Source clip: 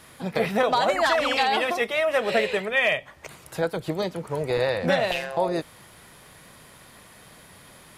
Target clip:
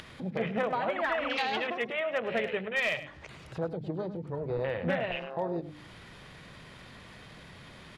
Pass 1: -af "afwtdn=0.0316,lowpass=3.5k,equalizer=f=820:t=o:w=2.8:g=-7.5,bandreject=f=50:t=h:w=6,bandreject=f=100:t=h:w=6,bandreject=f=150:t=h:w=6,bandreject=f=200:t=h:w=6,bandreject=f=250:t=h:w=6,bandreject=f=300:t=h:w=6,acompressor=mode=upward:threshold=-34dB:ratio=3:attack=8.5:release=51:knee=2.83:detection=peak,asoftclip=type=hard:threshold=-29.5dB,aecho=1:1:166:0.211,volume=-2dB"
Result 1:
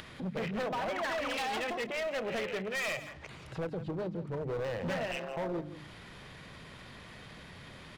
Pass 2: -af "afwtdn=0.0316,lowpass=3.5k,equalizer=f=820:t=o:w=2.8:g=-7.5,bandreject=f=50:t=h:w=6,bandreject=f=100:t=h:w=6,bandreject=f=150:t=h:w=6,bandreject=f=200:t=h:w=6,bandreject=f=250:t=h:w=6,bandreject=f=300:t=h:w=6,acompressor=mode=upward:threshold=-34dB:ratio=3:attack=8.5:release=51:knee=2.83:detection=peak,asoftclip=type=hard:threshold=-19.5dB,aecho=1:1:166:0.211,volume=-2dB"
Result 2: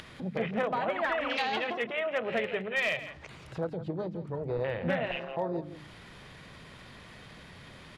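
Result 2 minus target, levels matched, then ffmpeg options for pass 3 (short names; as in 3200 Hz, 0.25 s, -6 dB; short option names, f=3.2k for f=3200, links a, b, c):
echo 63 ms late
-af "afwtdn=0.0316,lowpass=3.5k,equalizer=f=820:t=o:w=2.8:g=-7.5,bandreject=f=50:t=h:w=6,bandreject=f=100:t=h:w=6,bandreject=f=150:t=h:w=6,bandreject=f=200:t=h:w=6,bandreject=f=250:t=h:w=6,bandreject=f=300:t=h:w=6,acompressor=mode=upward:threshold=-34dB:ratio=3:attack=8.5:release=51:knee=2.83:detection=peak,asoftclip=type=hard:threshold=-19.5dB,aecho=1:1:103:0.211,volume=-2dB"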